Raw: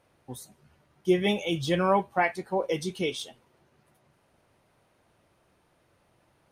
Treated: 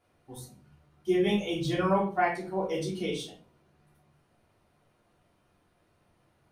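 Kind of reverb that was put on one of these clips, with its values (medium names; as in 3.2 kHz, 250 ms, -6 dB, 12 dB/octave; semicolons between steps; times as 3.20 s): simulated room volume 270 m³, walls furnished, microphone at 3.2 m; trim -8.5 dB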